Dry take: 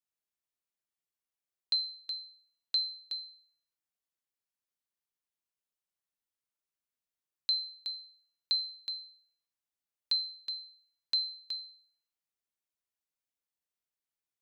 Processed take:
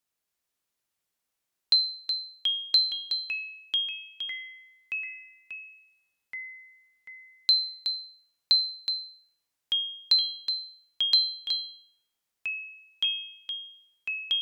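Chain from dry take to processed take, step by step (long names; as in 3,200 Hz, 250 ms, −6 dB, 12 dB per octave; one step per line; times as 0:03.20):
delay with pitch and tempo change per echo 283 ms, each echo −4 semitones, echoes 3, each echo −6 dB
harmonic generator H 3 −41 dB, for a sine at −20 dBFS
level +8.5 dB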